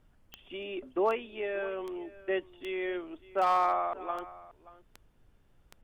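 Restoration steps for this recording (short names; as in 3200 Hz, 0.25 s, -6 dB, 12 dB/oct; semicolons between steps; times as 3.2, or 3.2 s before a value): clip repair -19.5 dBFS; de-click; expander -55 dBFS, range -21 dB; inverse comb 0.58 s -19 dB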